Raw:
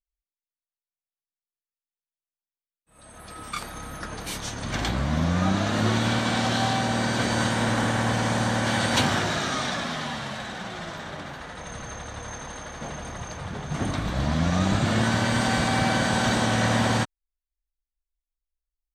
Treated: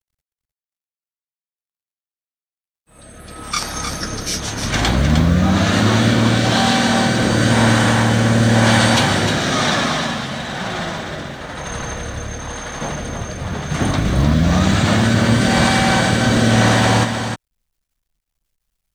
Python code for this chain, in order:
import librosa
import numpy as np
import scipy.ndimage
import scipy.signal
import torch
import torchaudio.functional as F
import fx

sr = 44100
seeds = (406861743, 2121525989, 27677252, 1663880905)

p1 = fx.peak_eq(x, sr, hz=5500.0, db=15.0, octaves=0.43, at=(3.51, 4.4))
p2 = fx.over_compress(p1, sr, threshold_db=-24.0, ratio=-1.0)
p3 = p1 + (p2 * librosa.db_to_amplitude(-0.5))
p4 = fx.rotary(p3, sr, hz=1.0)
p5 = fx.quant_companded(p4, sr, bits=8)
p6 = p5 + fx.echo_single(p5, sr, ms=307, db=-6.5, dry=0)
y = p6 * librosa.db_to_amplitude(5.0)